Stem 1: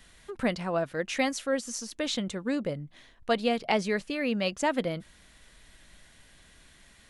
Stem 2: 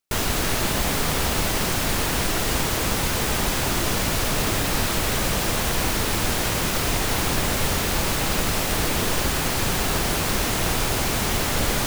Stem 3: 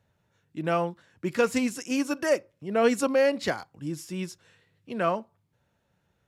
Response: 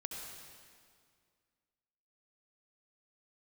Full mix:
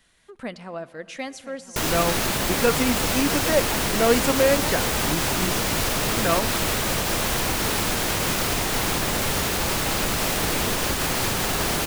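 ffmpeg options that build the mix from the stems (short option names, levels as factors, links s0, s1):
-filter_complex "[0:a]volume=0.501,asplit=3[s0][s1][s2];[s1]volume=0.224[s3];[s2]volume=0.188[s4];[1:a]adelay=1650,volume=1.26,asplit=2[s5][s6];[s6]volume=0.237[s7];[2:a]adelay=1250,volume=1.33[s8];[s0][s5]amix=inputs=2:normalize=0,lowshelf=f=100:g=-8,alimiter=limit=0.168:level=0:latency=1:release=194,volume=1[s9];[3:a]atrim=start_sample=2205[s10];[s3][s7]amix=inputs=2:normalize=0[s11];[s11][s10]afir=irnorm=-1:irlink=0[s12];[s4]aecho=0:1:1008:1[s13];[s8][s9][s12][s13]amix=inputs=4:normalize=0"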